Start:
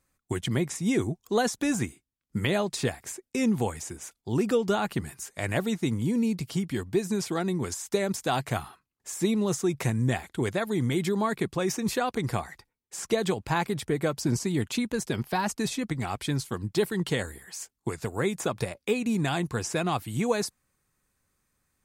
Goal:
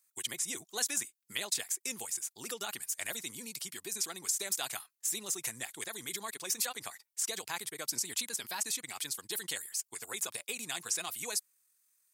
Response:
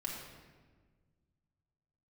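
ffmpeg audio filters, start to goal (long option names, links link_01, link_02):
-af "atempo=1.8,aderivative,volume=5.5dB"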